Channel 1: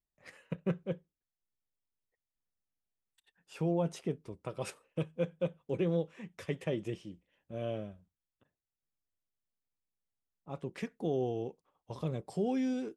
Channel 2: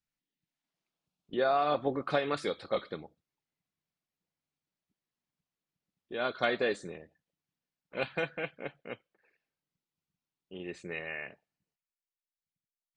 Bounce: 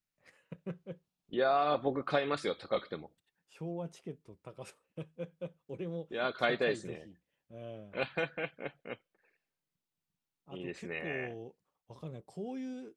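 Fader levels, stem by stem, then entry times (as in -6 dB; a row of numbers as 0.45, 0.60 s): -8.5, -1.0 dB; 0.00, 0.00 s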